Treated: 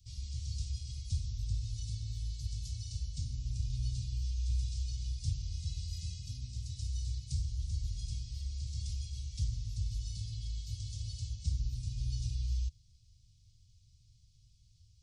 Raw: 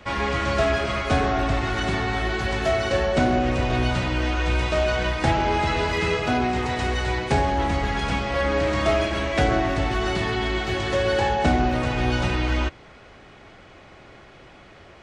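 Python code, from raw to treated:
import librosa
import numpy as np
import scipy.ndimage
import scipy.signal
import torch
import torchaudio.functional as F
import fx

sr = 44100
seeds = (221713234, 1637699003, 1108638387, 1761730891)

y = scipy.signal.sosfilt(scipy.signal.ellip(3, 1.0, 50, [110.0, 5000.0], 'bandstop', fs=sr, output='sos'), x)
y = fx.doppler_dist(y, sr, depth_ms=0.11, at=(8.93, 9.6))
y = y * 10.0 ** (-7.5 / 20.0)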